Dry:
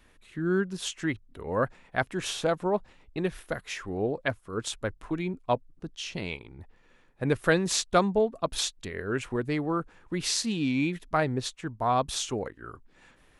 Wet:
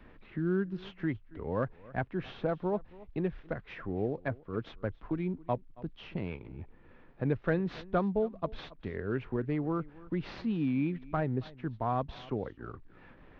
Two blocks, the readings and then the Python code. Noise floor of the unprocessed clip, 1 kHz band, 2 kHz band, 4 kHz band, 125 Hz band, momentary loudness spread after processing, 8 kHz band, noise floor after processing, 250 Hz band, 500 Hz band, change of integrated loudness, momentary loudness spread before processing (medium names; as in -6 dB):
-61 dBFS, -7.5 dB, -9.5 dB, -18.0 dB, -1.0 dB, 11 LU, under -35 dB, -57 dBFS, -2.5 dB, -5.5 dB, -5.5 dB, 12 LU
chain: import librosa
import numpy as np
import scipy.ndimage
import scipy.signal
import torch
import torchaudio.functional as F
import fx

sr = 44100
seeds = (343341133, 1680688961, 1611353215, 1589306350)

y = fx.cvsd(x, sr, bps=64000)
y = scipy.ndimage.gaussian_filter1d(y, 3.0, mode='constant')
y = fx.low_shelf(y, sr, hz=350.0, db=7.0)
y = y + 10.0 ** (-23.0 / 20.0) * np.pad(y, (int(275 * sr / 1000.0), 0))[:len(y)]
y = fx.band_squash(y, sr, depth_pct=40)
y = F.gain(torch.from_numpy(y), -7.0).numpy()